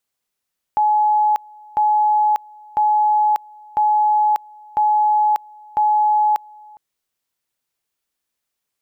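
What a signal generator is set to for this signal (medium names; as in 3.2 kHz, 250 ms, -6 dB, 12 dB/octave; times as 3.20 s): two-level tone 847 Hz -12.5 dBFS, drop 26.5 dB, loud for 0.59 s, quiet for 0.41 s, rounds 6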